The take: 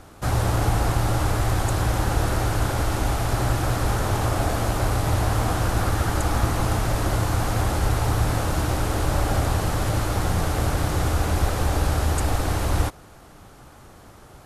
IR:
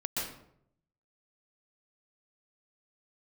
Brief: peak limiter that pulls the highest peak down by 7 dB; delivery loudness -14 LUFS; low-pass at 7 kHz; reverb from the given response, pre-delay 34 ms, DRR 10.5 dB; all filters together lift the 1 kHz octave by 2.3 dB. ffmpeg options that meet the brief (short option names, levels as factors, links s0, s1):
-filter_complex "[0:a]lowpass=7000,equalizer=f=1000:t=o:g=3,alimiter=limit=0.168:level=0:latency=1,asplit=2[s0][s1];[1:a]atrim=start_sample=2205,adelay=34[s2];[s1][s2]afir=irnorm=-1:irlink=0,volume=0.168[s3];[s0][s3]amix=inputs=2:normalize=0,volume=3.76"